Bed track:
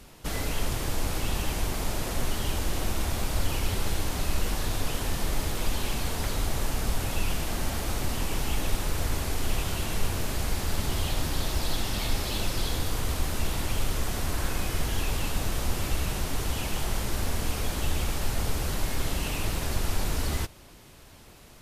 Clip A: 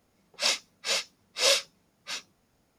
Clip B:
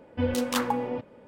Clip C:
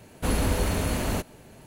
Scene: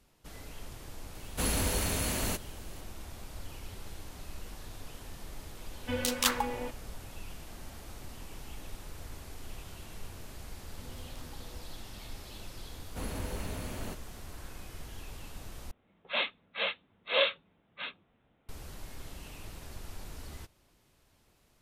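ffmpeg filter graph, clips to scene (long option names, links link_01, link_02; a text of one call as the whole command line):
ffmpeg -i bed.wav -i cue0.wav -i cue1.wav -i cue2.wav -filter_complex "[3:a]asplit=2[link_01][link_02];[2:a]asplit=2[link_03][link_04];[0:a]volume=-16.5dB[link_05];[link_01]highshelf=frequency=2400:gain=10.5[link_06];[link_03]tiltshelf=frequency=1200:gain=-7.5[link_07];[link_04]acompressor=threshold=-39dB:ratio=6:attack=3.2:release=140:knee=1:detection=peak[link_08];[1:a]aresample=8000,aresample=44100[link_09];[link_05]asplit=2[link_10][link_11];[link_10]atrim=end=15.714[link_12];[link_09]atrim=end=2.78,asetpts=PTS-STARTPTS,volume=-0.5dB[link_13];[link_11]atrim=start=18.486[link_14];[link_06]atrim=end=1.66,asetpts=PTS-STARTPTS,volume=-7.5dB,afade=type=in:duration=0.004:curve=hsin,afade=type=out:start_time=1.656:duration=0.004:curve=hsin,adelay=1150[link_15];[link_07]atrim=end=1.27,asetpts=PTS-STARTPTS,volume=-2dB,afade=type=in:duration=0.004:curve=hsin,afade=type=out:start_time=1.266:duration=0.004:curve=hsin,adelay=5700[link_16];[link_08]atrim=end=1.27,asetpts=PTS-STARTPTS,volume=-14.5dB,afade=type=in:duration=0.004:curve=hsin,afade=type=out:start_time=1.266:duration=0.004:curve=hsin,adelay=10630[link_17];[link_02]atrim=end=1.66,asetpts=PTS-STARTPTS,volume=-13dB,afade=type=in:duration=0.004:curve=hsin,afade=type=out:start_time=1.656:duration=0.004:curve=hsin,adelay=12730[link_18];[link_12][link_13]acrossfade=duration=0.004:curve1=hsin:curve2=hsin[link_19];[link_19][link_14]acrossfade=duration=0.004:curve1=hsin:curve2=hsin[link_20];[link_20][link_15][link_16][link_17][link_18]amix=inputs=5:normalize=0" out.wav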